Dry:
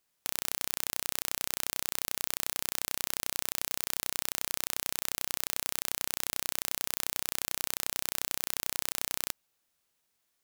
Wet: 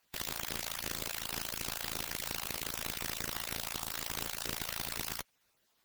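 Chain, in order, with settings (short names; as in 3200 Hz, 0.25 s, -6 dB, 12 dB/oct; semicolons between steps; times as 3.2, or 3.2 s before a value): random spectral dropouts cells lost 39%; in parallel at -3.5 dB: sample-rate reducer 14000 Hz, jitter 0%; on the sum: tube stage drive 27 dB, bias 0.65; time stretch by phase-locked vocoder 0.56×; gain +8.5 dB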